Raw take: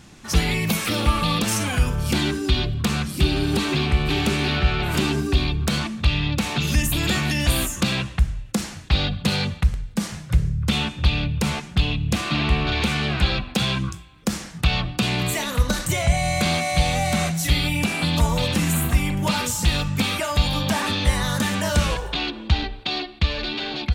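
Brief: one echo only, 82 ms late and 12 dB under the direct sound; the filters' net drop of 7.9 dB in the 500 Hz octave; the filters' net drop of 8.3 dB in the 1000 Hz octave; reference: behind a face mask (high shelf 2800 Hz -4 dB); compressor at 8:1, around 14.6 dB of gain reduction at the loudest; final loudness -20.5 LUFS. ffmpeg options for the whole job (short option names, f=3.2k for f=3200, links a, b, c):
-af "equalizer=f=500:t=o:g=-8.5,equalizer=f=1k:t=o:g=-7.5,acompressor=threshold=-28dB:ratio=8,highshelf=f=2.8k:g=-4,aecho=1:1:82:0.251,volume=12dB"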